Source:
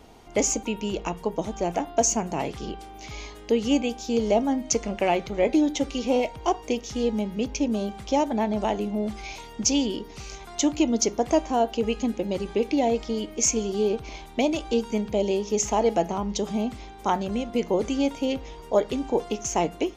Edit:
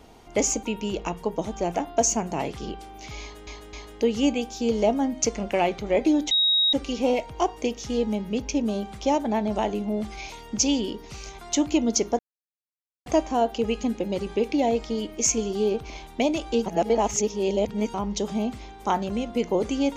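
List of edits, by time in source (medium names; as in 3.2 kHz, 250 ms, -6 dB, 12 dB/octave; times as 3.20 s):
3.21–3.47 s: loop, 3 plays
5.79 s: add tone 3.79 kHz -17.5 dBFS 0.42 s
11.25 s: insert silence 0.87 s
14.85–16.13 s: reverse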